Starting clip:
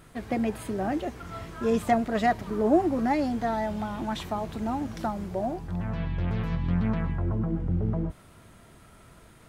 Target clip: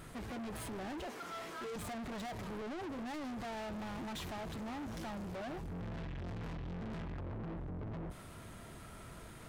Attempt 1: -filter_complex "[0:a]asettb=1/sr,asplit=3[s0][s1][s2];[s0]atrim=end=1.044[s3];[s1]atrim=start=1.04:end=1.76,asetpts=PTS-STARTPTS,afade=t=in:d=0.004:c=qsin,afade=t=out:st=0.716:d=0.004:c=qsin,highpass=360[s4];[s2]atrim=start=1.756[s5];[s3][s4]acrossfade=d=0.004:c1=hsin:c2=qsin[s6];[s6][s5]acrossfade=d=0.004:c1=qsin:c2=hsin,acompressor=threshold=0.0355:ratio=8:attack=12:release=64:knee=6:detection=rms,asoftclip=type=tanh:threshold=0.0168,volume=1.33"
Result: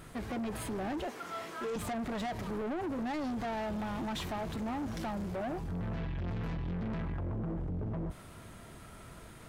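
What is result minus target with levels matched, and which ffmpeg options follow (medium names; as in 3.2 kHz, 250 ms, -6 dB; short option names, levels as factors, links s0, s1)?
saturation: distortion -4 dB
-filter_complex "[0:a]asettb=1/sr,asplit=3[s0][s1][s2];[s0]atrim=end=1.044[s3];[s1]atrim=start=1.04:end=1.76,asetpts=PTS-STARTPTS,afade=t=in:d=0.004:c=qsin,afade=t=out:st=0.716:d=0.004:c=qsin,highpass=360[s4];[s2]atrim=start=1.756[s5];[s3][s4]acrossfade=d=0.004:c1=hsin:c2=qsin[s6];[s6][s5]acrossfade=d=0.004:c1=qsin:c2=hsin,acompressor=threshold=0.0355:ratio=8:attack=12:release=64:knee=6:detection=rms,asoftclip=type=tanh:threshold=0.00668,volume=1.33"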